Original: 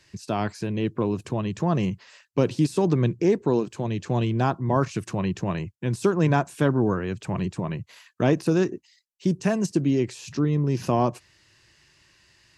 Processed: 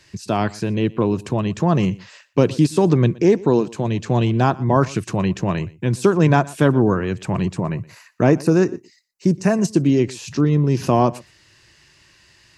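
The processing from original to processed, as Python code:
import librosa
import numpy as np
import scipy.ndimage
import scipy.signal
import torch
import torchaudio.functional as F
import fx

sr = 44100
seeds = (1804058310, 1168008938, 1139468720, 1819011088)

y = fx.peak_eq(x, sr, hz=3300.0, db=-14.5, octaves=0.36, at=(7.57, 9.62))
y = y + 10.0 ** (-22.0 / 20.0) * np.pad(y, (int(120 * sr / 1000.0), 0))[:len(y)]
y = y * 10.0 ** (6.0 / 20.0)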